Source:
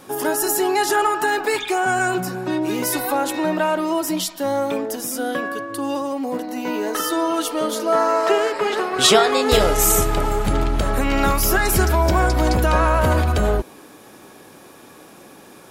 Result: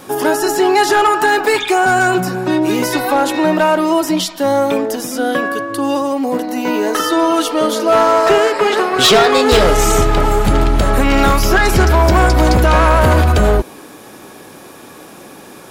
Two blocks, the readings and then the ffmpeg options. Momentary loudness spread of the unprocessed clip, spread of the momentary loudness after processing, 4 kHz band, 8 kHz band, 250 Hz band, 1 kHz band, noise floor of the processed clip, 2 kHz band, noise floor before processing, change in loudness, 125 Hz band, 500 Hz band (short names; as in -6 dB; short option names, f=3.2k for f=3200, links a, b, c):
9 LU, 7 LU, +5.5 dB, +1.0 dB, +7.0 dB, +7.0 dB, -37 dBFS, +7.0 dB, -45 dBFS, +6.0 dB, +7.0 dB, +6.5 dB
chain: -filter_complex "[0:a]acrossover=split=6100[a][b];[b]acompressor=threshold=-37dB:ratio=6[c];[a][c]amix=inputs=2:normalize=0,asoftclip=type=hard:threshold=-13dB,volume=7.5dB"